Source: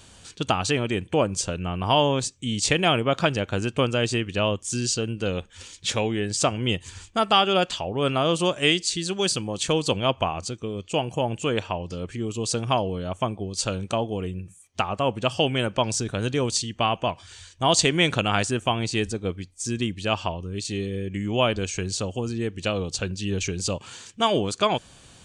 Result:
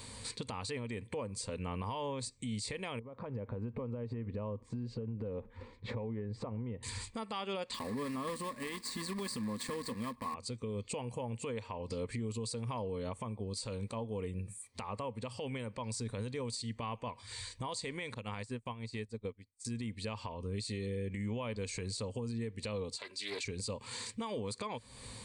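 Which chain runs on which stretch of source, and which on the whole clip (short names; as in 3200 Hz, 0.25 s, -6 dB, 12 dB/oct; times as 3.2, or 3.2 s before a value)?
2.99–6.83 LPF 1000 Hz + compressor 8:1, threshold -35 dBFS
7.74–10.36 block floating point 3-bit + small resonant body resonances 240/1100/1700 Hz, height 14 dB, ringing for 30 ms
18.14–19.65 dynamic EQ 9000 Hz, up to -5 dB, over -48 dBFS, Q 5 + upward expander 2.5:1, over -40 dBFS
22.96–23.45 HPF 640 Hz + comb 3 ms, depth 81% + Doppler distortion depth 0.24 ms
whole clip: ripple EQ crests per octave 0.95, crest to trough 11 dB; compressor 6:1, threshold -35 dBFS; limiter -30 dBFS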